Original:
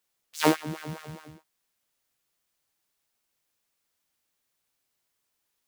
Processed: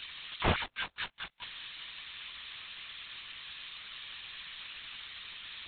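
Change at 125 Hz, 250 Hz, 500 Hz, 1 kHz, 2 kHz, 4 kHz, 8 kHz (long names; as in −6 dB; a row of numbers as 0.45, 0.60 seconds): −2.0 dB, −12.5 dB, −9.0 dB, −5.0 dB, +1.5 dB, +4.5 dB, below −35 dB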